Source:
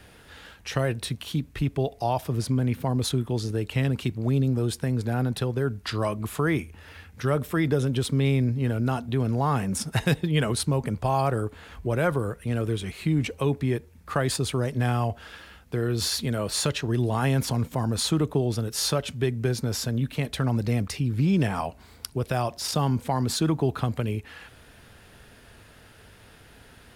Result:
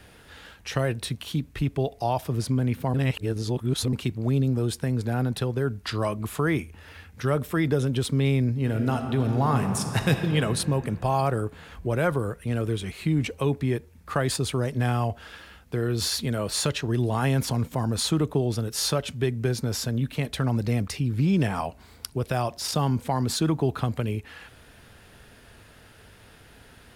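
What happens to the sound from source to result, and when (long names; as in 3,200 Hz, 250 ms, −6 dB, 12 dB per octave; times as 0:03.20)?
0:02.94–0:03.93: reverse
0:08.55–0:10.26: thrown reverb, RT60 3 s, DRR 5.5 dB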